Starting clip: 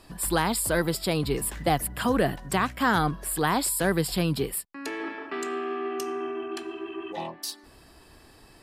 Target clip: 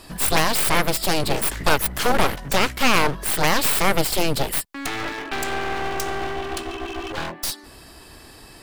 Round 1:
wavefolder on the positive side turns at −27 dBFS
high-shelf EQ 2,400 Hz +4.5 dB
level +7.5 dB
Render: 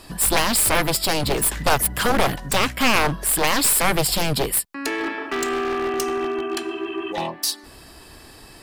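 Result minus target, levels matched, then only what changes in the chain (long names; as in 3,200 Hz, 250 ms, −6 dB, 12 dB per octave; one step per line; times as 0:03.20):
wavefolder on the positive side: distortion −31 dB
change: wavefolder on the positive side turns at −37.5 dBFS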